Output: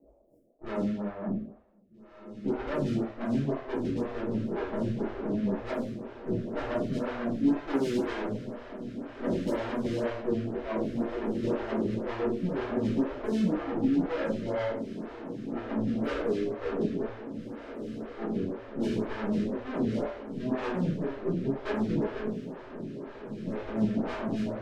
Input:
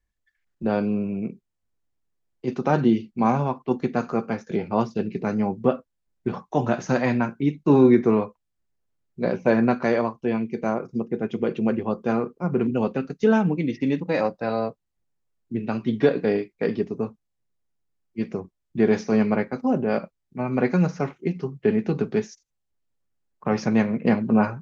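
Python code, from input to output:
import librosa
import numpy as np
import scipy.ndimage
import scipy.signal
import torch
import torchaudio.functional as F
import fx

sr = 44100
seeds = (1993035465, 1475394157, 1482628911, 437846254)

p1 = x + 0.5 * 10.0 ** (-17.0 / 20.0) * np.diff(np.sign(x), prepend=np.sign(x[:1]))
p2 = scipy.signal.sosfilt(scipy.signal.ellip(4, 1.0, 60, 650.0, 'lowpass', fs=sr, output='sos'), p1)
p3 = fx.tube_stage(p2, sr, drive_db=34.0, bias=0.5)
p4 = fx.rotary_switch(p3, sr, hz=8.0, then_hz=0.85, switch_at_s=19.4)
p5 = p4 + fx.echo_diffused(p4, sr, ms=1733, feedback_pct=64, wet_db=-10.5, dry=0)
p6 = fx.rev_double_slope(p5, sr, seeds[0], early_s=0.68, late_s=2.1, knee_db=-26, drr_db=-10.0)
y = fx.stagger_phaser(p6, sr, hz=2.0)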